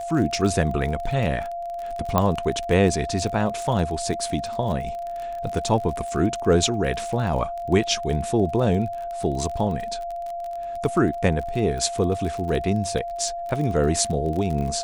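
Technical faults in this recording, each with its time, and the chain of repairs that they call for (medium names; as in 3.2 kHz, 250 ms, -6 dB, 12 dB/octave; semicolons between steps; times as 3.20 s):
crackle 36 per s -29 dBFS
whine 690 Hz -28 dBFS
2.18 s: pop -7 dBFS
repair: de-click; band-stop 690 Hz, Q 30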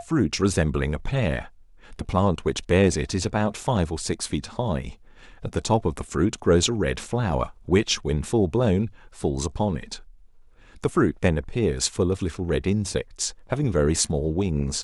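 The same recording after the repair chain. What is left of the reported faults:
2.18 s: pop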